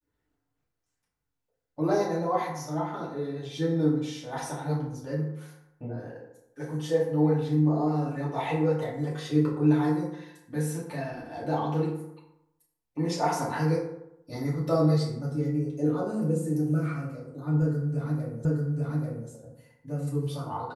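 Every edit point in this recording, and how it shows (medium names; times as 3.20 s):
18.45 s: repeat of the last 0.84 s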